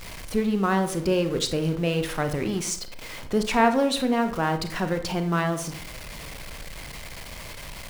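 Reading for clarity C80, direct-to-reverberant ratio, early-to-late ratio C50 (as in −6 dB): 14.5 dB, 8.0 dB, 11.0 dB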